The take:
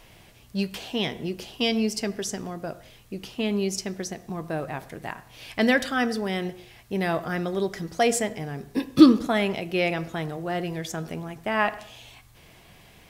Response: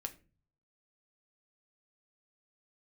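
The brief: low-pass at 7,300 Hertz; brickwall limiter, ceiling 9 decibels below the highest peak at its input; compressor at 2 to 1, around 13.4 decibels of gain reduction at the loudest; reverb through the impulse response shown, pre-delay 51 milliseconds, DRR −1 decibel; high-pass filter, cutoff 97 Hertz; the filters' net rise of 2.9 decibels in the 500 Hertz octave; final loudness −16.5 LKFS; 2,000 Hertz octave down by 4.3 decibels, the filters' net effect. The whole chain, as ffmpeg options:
-filter_complex "[0:a]highpass=97,lowpass=7300,equalizer=frequency=500:width_type=o:gain=4,equalizer=frequency=2000:width_type=o:gain=-5.5,acompressor=threshold=-31dB:ratio=2,alimiter=limit=-23dB:level=0:latency=1,asplit=2[link_01][link_02];[1:a]atrim=start_sample=2205,adelay=51[link_03];[link_02][link_03]afir=irnorm=-1:irlink=0,volume=3dB[link_04];[link_01][link_04]amix=inputs=2:normalize=0,volume=14.5dB"

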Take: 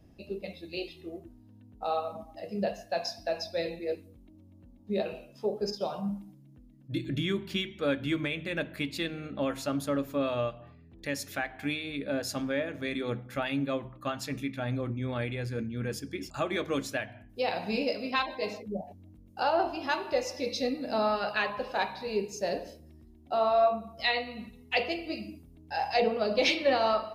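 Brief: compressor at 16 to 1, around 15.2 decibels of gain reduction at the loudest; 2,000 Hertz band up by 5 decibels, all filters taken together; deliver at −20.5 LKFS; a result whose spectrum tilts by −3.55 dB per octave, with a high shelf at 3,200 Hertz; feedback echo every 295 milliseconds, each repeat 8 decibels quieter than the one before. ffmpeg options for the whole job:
ffmpeg -i in.wav -af "equalizer=frequency=2000:width_type=o:gain=7.5,highshelf=frequency=3200:gain=-3.5,acompressor=threshold=-35dB:ratio=16,aecho=1:1:295|590|885|1180|1475:0.398|0.159|0.0637|0.0255|0.0102,volume=19dB" out.wav

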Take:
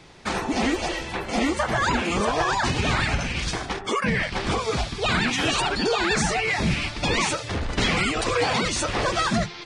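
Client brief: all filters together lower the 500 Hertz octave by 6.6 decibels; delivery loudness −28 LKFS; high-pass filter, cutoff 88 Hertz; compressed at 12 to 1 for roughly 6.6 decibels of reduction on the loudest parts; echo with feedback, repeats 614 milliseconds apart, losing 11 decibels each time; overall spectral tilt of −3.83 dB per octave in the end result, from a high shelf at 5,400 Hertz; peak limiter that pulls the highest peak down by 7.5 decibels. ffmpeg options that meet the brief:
ffmpeg -i in.wav -af "highpass=88,equalizer=frequency=500:width_type=o:gain=-8.5,highshelf=frequency=5400:gain=-7.5,acompressor=threshold=-27dB:ratio=12,alimiter=level_in=0.5dB:limit=-24dB:level=0:latency=1,volume=-0.5dB,aecho=1:1:614|1228|1842:0.282|0.0789|0.0221,volume=4.5dB" out.wav

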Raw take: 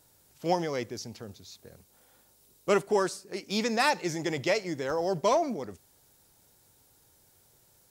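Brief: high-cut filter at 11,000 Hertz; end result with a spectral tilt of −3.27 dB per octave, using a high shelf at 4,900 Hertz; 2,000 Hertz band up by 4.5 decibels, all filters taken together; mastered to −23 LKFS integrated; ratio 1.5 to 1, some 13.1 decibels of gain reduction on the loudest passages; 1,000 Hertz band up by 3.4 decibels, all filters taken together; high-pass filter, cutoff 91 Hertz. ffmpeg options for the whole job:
ffmpeg -i in.wav -af "highpass=91,lowpass=11000,equalizer=frequency=1000:width_type=o:gain=3.5,equalizer=frequency=2000:width_type=o:gain=5.5,highshelf=frequency=4900:gain=-7,acompressor=threshold=-56dB:ratio=1.5,volume=17dB" out.wav

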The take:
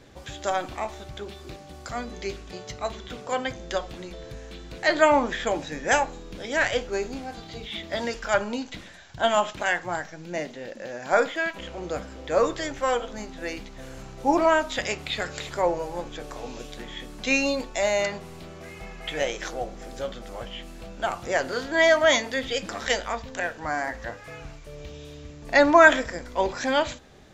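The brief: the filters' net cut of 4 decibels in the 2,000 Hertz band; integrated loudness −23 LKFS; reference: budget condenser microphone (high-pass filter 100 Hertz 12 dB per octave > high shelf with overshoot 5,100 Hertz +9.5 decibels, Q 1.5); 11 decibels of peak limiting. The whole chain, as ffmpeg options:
ffmpeg -i in.wav -af "equalizer=frequency=2000:width_type=o:gain=-4,alimiter=limit=-15.5dB:level=0:latency=1,highpass=100,highshelf=frequency=5100:width_type=q:width=1.5:gain=9.5,volume=6dB" out.wav

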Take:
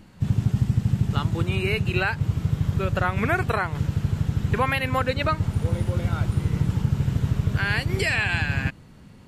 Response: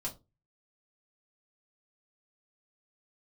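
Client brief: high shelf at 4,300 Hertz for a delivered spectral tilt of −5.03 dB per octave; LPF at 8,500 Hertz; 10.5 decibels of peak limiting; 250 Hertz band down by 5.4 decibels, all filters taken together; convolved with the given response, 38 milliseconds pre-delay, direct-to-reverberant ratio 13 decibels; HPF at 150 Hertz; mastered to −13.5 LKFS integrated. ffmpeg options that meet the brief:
-filter_complex "[0:a]highpass=150,lowpass=8500,equalizer=frequency=250:width_type=o:gain=-6.5,highshelf=frequency=4300:gain=-3,alimiter=limit=-22dB:level=0:latency=1,asplit=2[link_01][link_02];[1:a]atrim=start_sample=2205,adelay=38[link_03];[link_02][link_03]afir=irnorm=-1:irlink=0,volume=-14dB[link_04];[link_01][link_04]amix=inputs=2:normalize=0,volume=18.5dB"

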